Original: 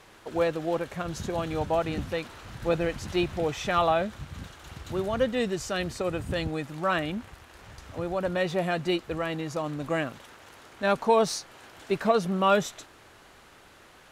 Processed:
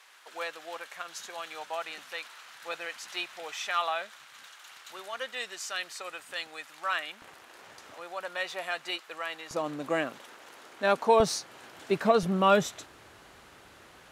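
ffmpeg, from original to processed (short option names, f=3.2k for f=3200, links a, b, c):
-af "asetnsamples=n=441:p=0,asendcmd='7.22 highpass f 340;7.94 highpass f 1000;9.51 highpass f 270;11.2 highpass f 130;12.23 highpass f 45',highpass=1.2k"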